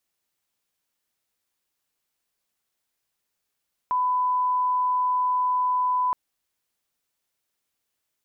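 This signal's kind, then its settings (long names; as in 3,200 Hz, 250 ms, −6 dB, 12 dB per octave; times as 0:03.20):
line-up tone −20 dBFS 2.22 s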